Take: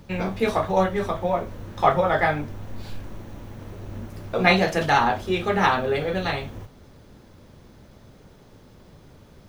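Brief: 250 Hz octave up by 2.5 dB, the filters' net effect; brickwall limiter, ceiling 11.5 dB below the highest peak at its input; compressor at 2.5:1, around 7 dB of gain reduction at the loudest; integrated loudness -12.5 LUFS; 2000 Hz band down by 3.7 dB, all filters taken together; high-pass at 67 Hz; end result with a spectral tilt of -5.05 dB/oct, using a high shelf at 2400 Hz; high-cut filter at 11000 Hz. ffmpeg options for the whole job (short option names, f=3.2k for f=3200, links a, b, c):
-af "highpass=67,lowpass=11k,equalizer=f=250:t=o:g=4,equalizer=f=2k:t=o:g=-8,highshelf=f=2.4k:g=7,acompressor=threshold=-24dB:ratio=2.5,volume=20.5dB,alimiter=limit=-2dB:level=0:latency=1"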